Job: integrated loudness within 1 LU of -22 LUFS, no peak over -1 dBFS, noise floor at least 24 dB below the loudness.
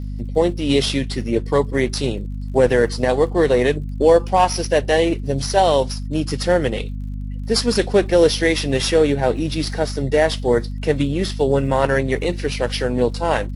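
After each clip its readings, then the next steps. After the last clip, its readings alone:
ticks 43/s; hum 50 Hz; harmonics up to 250 Hz; hum level -24 dBFS; loudness -19.0 LUFS; peak -2.5 dBFS; loudness target -22.0 LUFS
-> de-click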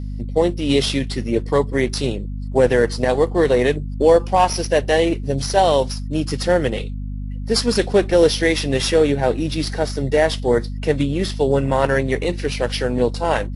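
ticks 0.074/s; hum 50 Hz; harmonics up to 250 Hz; hum level -24 dBFS
-> notches 50/100/150/200/250 Hz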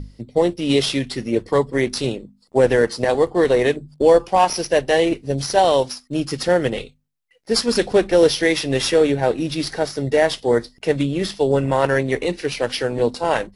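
hum none; loudness -19.0 LUFS; peak -2.5 dBFS; loudness target -22.0 LUFS
-> gain -3 dB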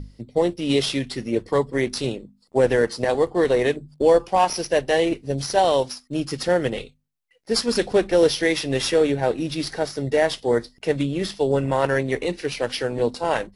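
loudness -22.0 LUFS; peak -5.5 dBFS; noise floor -61 dBFS

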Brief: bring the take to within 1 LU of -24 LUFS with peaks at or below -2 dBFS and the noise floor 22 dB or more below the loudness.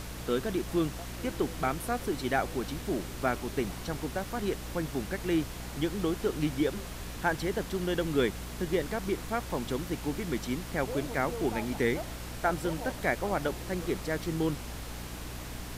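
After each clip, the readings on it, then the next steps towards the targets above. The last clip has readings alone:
hum 60 Hz; harmonics up to 300 Hz; hum level -40 dBFS; noise floor -41 dBFS; noise floor target -55 dBFS; loudness -32.5 LUFS; peak -13.5 dBFS; loudness target -24.0 LUFS
-> notches 60/120/180/240/300 Hz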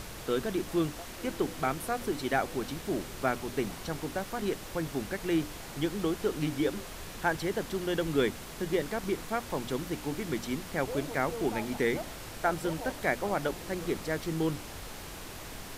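hum none; noise floor -43 dBFS; noise floor target -55 dBFS
-> noise print and reduce 12 dB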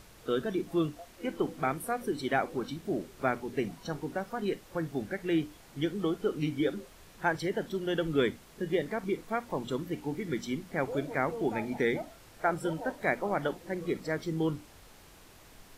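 noise floor -55 dBFS; loudness -33.0 LUFS; peak -13.0 dBFS; loudness target -24.0 LUFS
-> gain +9 dB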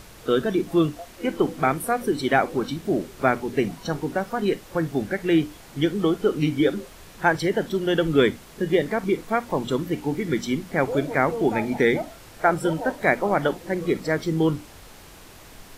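loudness -24.0 LUFS; peak -4.0 dBFS; noise floor -46 dBFS

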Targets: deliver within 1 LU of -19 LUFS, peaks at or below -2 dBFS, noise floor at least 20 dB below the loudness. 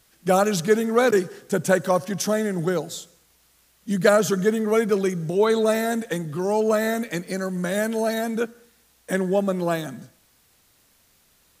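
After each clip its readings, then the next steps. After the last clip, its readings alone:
loudness -22.5 LUFS; peak -3.5 dBFS; loudness target -19.0 LUFS
-> gain +3.5 dB; limiter -2 dBFS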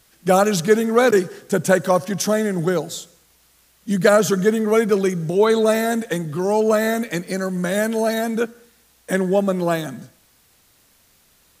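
loudness -19.5 LUFS; peak -2.0 dBFS; noise floor -58 dBFS

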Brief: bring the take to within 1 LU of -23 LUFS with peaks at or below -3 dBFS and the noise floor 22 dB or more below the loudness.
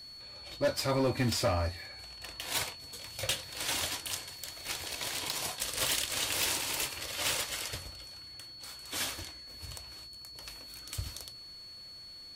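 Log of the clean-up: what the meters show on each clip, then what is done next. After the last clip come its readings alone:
clipped 0.4%; flat tops at -23.0 dBFS; steady tone 4400 Hz; tone level -46 dBFS; loudness -34.0 LUFS; peak -23.0 dBFS; loudness target -23.0 LUFS
-> clip repair -23 dBFS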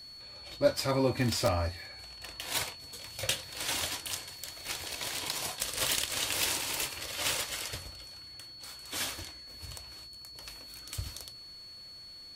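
clipped 0.0%; steady tone 4400 Hz; tone level -46 dBFS
-> notch 4400 Hz, Q 30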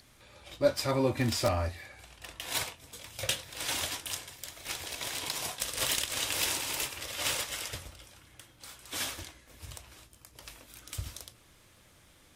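steady tone none; loudness -32.5 LUFS; peak -14.0 dBFS; loudness target -23.0 LUFS
-> gain +9.5 dB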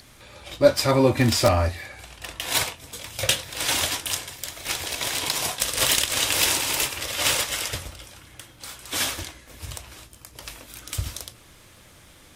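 loudness -23.0 LUFS; peak -4.5 dBFS; noise floor -51 dBFS

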